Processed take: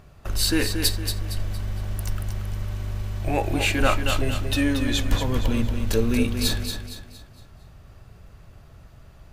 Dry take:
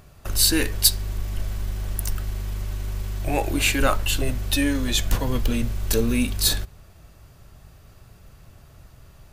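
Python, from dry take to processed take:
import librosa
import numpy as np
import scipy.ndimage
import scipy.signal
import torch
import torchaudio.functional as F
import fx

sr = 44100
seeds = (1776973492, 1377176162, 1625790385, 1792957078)

y = fx.high_shelf(x, sr, hz=5600.0, db=-10.5)
y = fx.echo_feedback(y, sr, ms=231, feedback_pct=39, wet_db=-7.0)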